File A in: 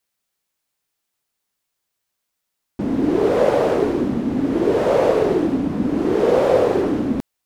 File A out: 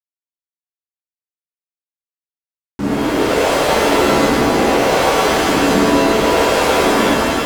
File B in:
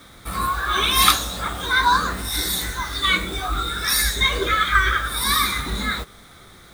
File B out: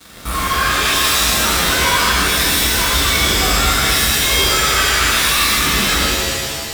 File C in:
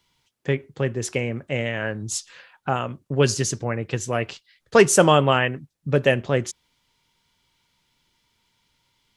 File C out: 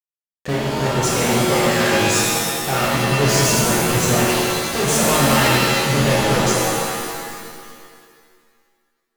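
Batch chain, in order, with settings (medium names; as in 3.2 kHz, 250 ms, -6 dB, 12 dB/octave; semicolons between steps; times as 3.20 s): fuzz box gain 36 dB, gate -43 dBFS; pitch-shifted reverb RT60 1.9 s, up +7 st, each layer -2 dB, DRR -5 dB; trim -9 dB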